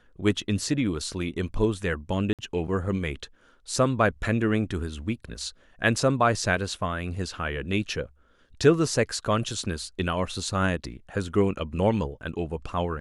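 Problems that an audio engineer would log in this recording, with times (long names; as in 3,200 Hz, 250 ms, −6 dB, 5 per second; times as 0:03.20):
0:02.33–0:02.39: drop-out 57 ms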